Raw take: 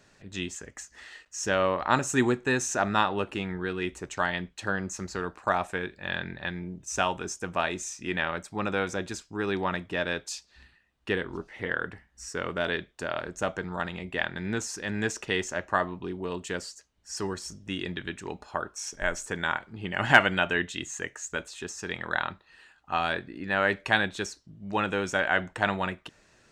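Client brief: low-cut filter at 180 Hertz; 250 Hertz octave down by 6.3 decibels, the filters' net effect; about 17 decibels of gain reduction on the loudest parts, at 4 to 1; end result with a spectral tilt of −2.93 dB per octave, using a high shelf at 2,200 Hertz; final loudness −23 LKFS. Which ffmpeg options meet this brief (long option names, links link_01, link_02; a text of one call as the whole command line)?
ffmpeg -i in.wav -af "highpass=180,equalizer=frequency=250:width_type=o:gain=-7,highshelf=frequency=2200:gain=-5.5,acompressor=threshold=-34dB:ratio=4,volume=16.5dB" out.wav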